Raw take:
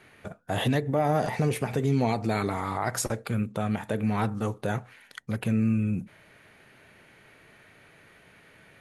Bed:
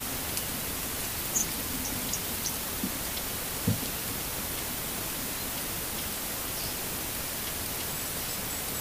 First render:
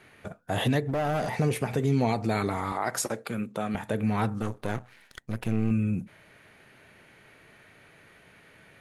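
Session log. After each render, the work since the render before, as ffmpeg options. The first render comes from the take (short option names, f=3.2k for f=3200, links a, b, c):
-filter_complex "[0:a]asettb=1/sr,asplit=3[a][b][c];[a]atrim=end=0.834[d];[b]atrim=start=0.83:end=1.37,asetpts=PTS-STARTPTS,afade=t=in:d=0.004:c=qsin,afade=t=out:st=0.536:d=0.004:c=qsin,asoftclip=type=hard:threshold=-24.5dB[e];[c]atrim=start=1.366[f];[d][e]acrossfade=d=0.004:c1=hsin:c2=qsin[g];[g][f]acrossfade=d=0.004:c1=qsin:c2=hsin,asettb=1/sr,asplit=3[h][i][j];[h]atrim=end=2.724[k];[i]atrim=start=2.72:end=3.75,asetpts=PTS-STARTPTS,afade=t=in:d=0.004:c=qsin,afade=t=out:st=1.026:d=0.004:c=qsin,highpass=200[l];[j]atrim=start=3.746[m];[k][l]acrossfade=d=0.004:c1=hsin:c2=qsin[n];[n][m]acrossfade=d=0.004:c1=qsin:c2=hsin,asettb=1/sr,asplit=3[o][p][q];[o]atrim=end=4.424[r];[p]atrim=start=4.42:end=5.71,asetpts=PTS-STARTPTS,afade=t=in:d=0.004:c=qsin,afade=t=out:st=1.286:d=0.004:c=qsin,aeval=exprs='if(lt(val(0),0),0.251*val(0),val(0))':c=same[s];[q]atrim=start=5.706[t];[r][s]acrossfade=d=0.004:c1=hsin:c2=qsin[u];[u][t]acrossfade=d=0.004:c1=qsin:c2=hsin"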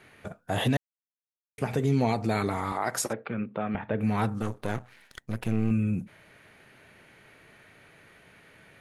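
-filter_complex "[0:a]asettb=1/sr,asplit=3[a][b][c];[a]atrim=end=3.134[d];[b]atrim=start=3.13:end=4.01,asetpts=PTS-STARTPTS,afade=t=in:d=0.004:c=qsin,afade=t=out:st=0.876:d=0.004:c=qsin,lowpass=f=2.8k:w=0.5412,lowpass=f=2.8k:w=1.3066[e];[c]atrim=start=4.006[f];[d][e]acrossfade=d=0.004:c1=hsin:c2=qsin[g];[g][f]acrossfade=d=0.004:c1=qsin:c2=hsin,asplit=3[h][i][j];[h]atrim=end=0.77,asetpts=PTS-STARTPTS,afade=t=out:st=0.766:d=0.004:c=hsin[k];[i]atrim=start=0.77:end=1.58,asetpts=PTS-STARTPTS,volume=0[l];[j]atrim=start=1.58,asetpts=PTS-STARTPTS,afade=t=in:d=0.004:c=hsin[m];[k][l][m]concat=n=3:v=0:a=1"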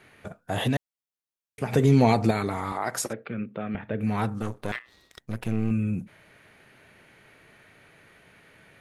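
-filter_complex "[0:a]asettb=1/sr,asplit=3[a][b][c];[a]atrim=end=1.724[d];[b]atrim=start=1.72:end=2.31,asetpts=PTS-STARTPTS,afade=t=in:d=0.004:c=qsin,afade=t=out:st=0.586:d=0.004:c=qsin,acontrast=62[e];[c]atrim=start=2.306[f];[d][e]acrossfade=d=0.004:c1=hsin:c2=qsin[g];[g][f]acrossfade=d=0.004:c1=qsin:c2=hsin,asettb=1/sr,asplit=3[h][i][j];[h]atrim=end=3.064[k];[i]atrim=start=3.06:end=4.07,asetpts=PTS-STARTPTS,afade=t=in:d=0.004:c=qsin,afade=t=out:st=1.006:d=0.004:c=qsin,equalizer=f=910:w=1.7:g=-8[l];[j]atrim=start=4.066[m];[k][l]acrossfade=d=0.004:c1=hsin:c2=qsin[n];[n][m]acrossfade=d=0.004:c1=qsin:c2=hsin,asettb=1/sr,asplit=3[o][p][q];[o]atrim=end=4.724[r];[p]atrim=start=4.72:end=5.2,asetpts=PTS-STARTPTS,afade=t=in:d=0.004:c=qsin,afade=t=out:st=0.476:d=0.004:c=qsin,aeval=exprs='val(0)*sin(2*PI*1900*n/s)':c=same[s];[q]atrim=start=5.196[t];[r][s]acrossfade=d=0.004:c1=hsin:c2=qsin[u];[u][t]acrossfade=d=0.004:c1=qsin:c2=hsin"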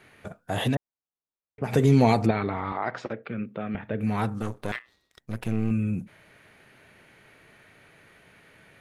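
-filter_complex "[0:a]asplit=3[a][b][c];[a]afade=t=out:st=0.74:d=0.02[d];[b]lowpass=1.2k,afade=t=in:st=0.74:d=0.02,afade=t=out:st=1.63:d=0.02[e];[c]afade=t=in:st=1.63:d=0.02[f];[d][e][f]amix=inputs=3:normalize=0,asplit=3[g][h][i];[g]afade=t=out:st=2.25:d=0.02[j];[h]lowpass=f=3.5k:w=0.5412,lowpass=f=3.5k:w=1.3066,afade=t=in:st=2.25:d=0.02,afade=t=out:st=3.22:d=0.02[k];[i]afade=t=in:st=3.22:d=0.02[l];[j][k][l]amix=inputs=3:normalize=0,asplit=3[m][n][o];[m]atrim=end=4.99,asetpts=PTS-STARTPTS,afade=t=out:st=4.75:d=0.24:silence=0.251189[p];[n]atrim=start=4.99:end=5.11,asetpts=PTS-STARTPTS,volume=-12dB[q];[o]atrim=start=5.11,asetpts=PTS-STARTPTS,afade=t=in:d=0.24:silence=0.251189[r];[p][q][r]concat=n=3:v=0:a=1"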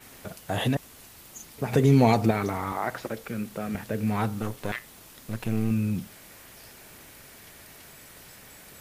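-filter_complex "[1:a]volume=-16dB[a];[0:a][a]amix=inputs=2:normalize=0"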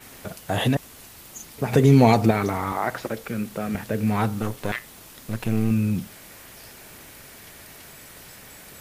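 -af "volume=4dB"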